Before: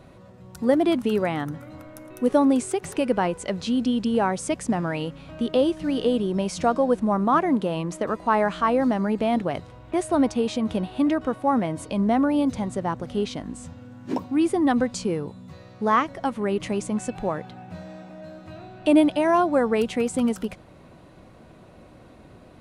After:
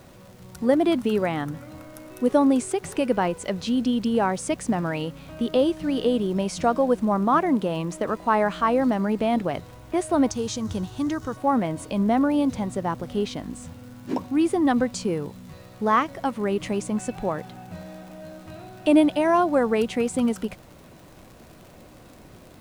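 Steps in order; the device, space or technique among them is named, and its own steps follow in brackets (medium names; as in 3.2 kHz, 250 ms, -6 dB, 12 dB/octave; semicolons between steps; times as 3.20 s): vinyl LP (crackle 81 per s -39 dBFS; pink noise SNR 32 dB); 10.31–11.37 s: fifteen-band graphic EQ 100 Hz +11 dB, 250 Hz -6 dB, 630 Hz -10 dB, 2.5 kHz -7 dB, 6.3 kHz +10 dB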